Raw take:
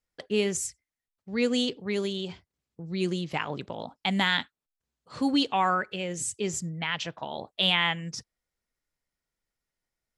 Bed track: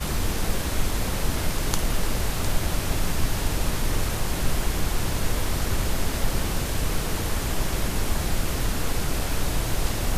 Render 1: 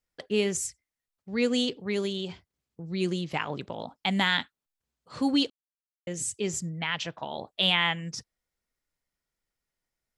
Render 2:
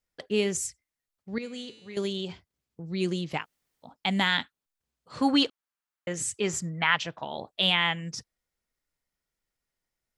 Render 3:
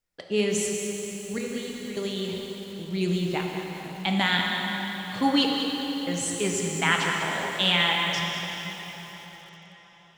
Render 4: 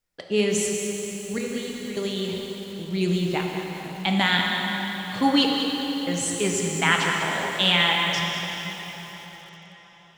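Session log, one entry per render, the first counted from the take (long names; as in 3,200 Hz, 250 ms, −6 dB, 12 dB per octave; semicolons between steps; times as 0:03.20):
0:05.50–0:06.07: silence
0:01.38–0:01.97: tuned comb filter 110 Hz, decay 1.2 s, mix 80%; 0:03.41–0:03.87: fill with room tone, crossfade 0.10 s; 0:05.21–0:06.98: parametric band 1,300 Hz +10.5 dB 1.8 octaves
dense smooth reverb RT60 4.7 s, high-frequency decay 0.85×, DRR 0 dB; feedback echo at a low word length 198 ms, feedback 35%, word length 7 bits, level −8.5 dB
level +2.5 dB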